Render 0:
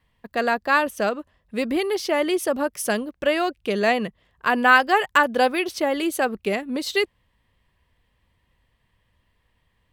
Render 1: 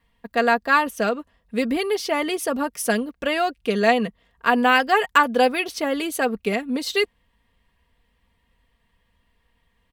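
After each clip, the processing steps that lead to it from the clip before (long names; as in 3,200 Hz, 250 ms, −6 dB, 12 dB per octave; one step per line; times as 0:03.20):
comb filter 4.3 ms, depth 52%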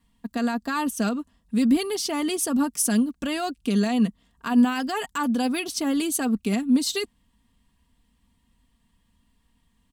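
brickwall limiter −14.5 dBFS, peak gain reduction 11 dB
graphic EQ with 10 bands 250 Hz +9 dB, 500 Hz −11 dB, 2,000 Hz −8 dB, 8,000 Hz +8 dB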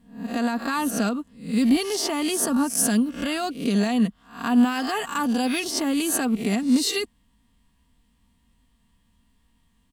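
peak hold with a rise ahead of every peak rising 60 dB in 0.43 s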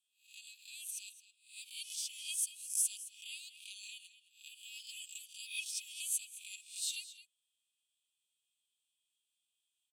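Chebyshev high-pass with heavy ripple 2,400 Hz, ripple 9 dB
slap from a distant wall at 37 metres, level −12 dB
level −7 dB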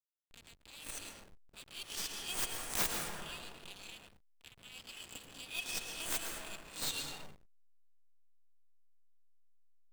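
stylus tracing distortion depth 0.13 ms
dense smooth reverb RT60 2.7 s, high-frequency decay 0.35×, pre-delay 95 ms, DRR 0.5 dB
slack as between gear wheels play −42 dBFS
level +1.5 dB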